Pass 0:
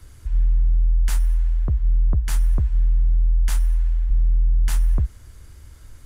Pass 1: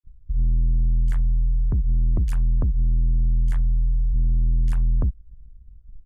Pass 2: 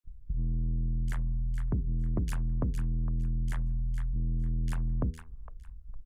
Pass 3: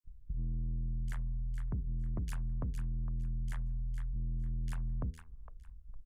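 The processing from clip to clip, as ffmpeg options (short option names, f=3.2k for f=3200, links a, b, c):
-filter_complex "[0:a]anlmdn=251,acrossover=split=2600[a][b];[a]adelay=40[c];[c][b]amix=inputs=2:normalize=0,asoftclip=type=tanh:threshold=-19dB,volume=3dB"
-filter_complex "[0:a]bandreject=f=79.76:t=h:w=4,bandreject=f=159.52:t=h:w=4,bandreject=f=239.28:t=h:w=4,bandreject=f=319.04:t=h:w=4,bandreject=f=398.8:t=h:w=4,bandreject=f=478.56:t=h:w=4,acrossover=split=130|730[a][b][c];[a]acompressor=threshold=-31dB:ratio=5[d];[c]aecho=1:1:459|918|1377:0.447|0.0938|0.0197[e];[d][b][e]amix=inputs=3:normalize=0"
-af "adynamicequalizer=threshold=0.00355:dfrequency=350:dqfactor=0.84:tfrequency=350:tqfactor=0.84:attack=5:release=100:ratio=0.375:range=3:mode=cutabove:tftype=bell,volume=-5.5dB"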